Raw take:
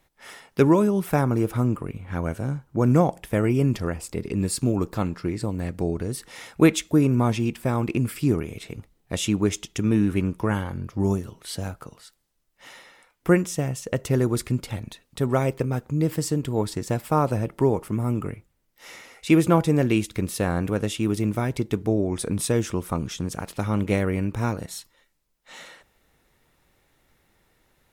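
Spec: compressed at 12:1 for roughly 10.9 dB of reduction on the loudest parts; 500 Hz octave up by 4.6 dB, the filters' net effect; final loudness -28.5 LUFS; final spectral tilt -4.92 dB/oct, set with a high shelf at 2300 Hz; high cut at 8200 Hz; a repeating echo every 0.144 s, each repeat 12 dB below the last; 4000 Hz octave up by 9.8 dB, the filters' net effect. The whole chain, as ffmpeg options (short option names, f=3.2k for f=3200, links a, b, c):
-af "lowpass=8.2k,equalizer=f=500:t=o:g=5.5,highshelf=f=2.3k:g=6,equalizer=f=4k:t=o:g=7,acompressor=threshold=-20dB:ratio=12,aecho=1:1:144|288|432:0.251|0.0628|0.0157,volume=-2dB"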